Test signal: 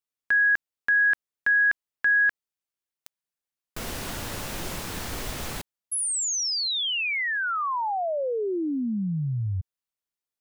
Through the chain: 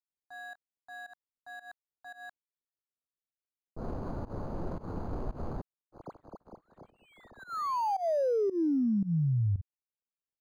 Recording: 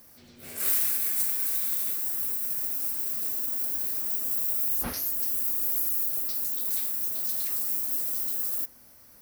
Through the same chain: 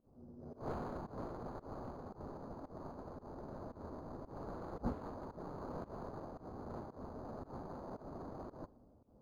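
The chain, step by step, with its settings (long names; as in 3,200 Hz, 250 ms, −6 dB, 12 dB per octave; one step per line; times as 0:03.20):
running median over 25 samples
flat-topped bell 4,200 Hz −13 dB 2.3 octaves
fake sidechain pumping 113 BPM, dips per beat 1, −21 dB, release 137 ms
low-pass that shuts in the quiet parts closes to 660 Hz, open at −27.5 dBFS
linearly interpolated sample-rate reduction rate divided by 8×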